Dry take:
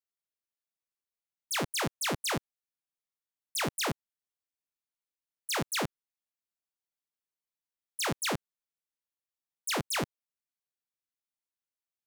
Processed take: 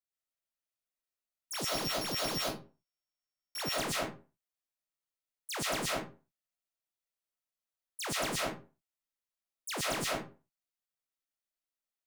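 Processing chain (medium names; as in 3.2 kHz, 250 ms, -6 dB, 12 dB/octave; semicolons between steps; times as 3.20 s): 1.53–3.63 s: sorted samples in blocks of 8 samples; reverberation RT60 0.35 s, pre-delay 85 ms, DRR -5 dB; trim -7 dB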